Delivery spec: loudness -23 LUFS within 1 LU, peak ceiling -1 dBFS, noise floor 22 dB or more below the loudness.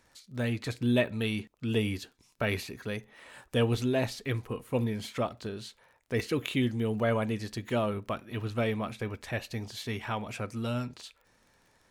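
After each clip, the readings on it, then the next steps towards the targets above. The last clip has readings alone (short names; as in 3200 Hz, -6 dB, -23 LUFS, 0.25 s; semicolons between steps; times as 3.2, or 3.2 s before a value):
ticks 29/s; loudness -32.0 LUFS; peak -13.0 dBFS; loudness target -23.0 LUFS
-> de-click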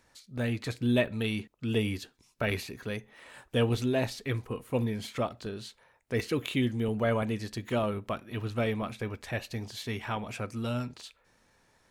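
ticks 0.50/s; loudness -32.0 LUFS; peak -13.0 dBFS; loudness target -23.0 LUFS
-> gain +9 dB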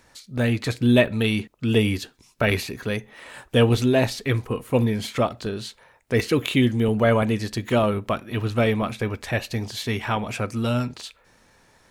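loudness -23.0 LUFS; peak -4.0 dBFS; noise floor -59 dBFS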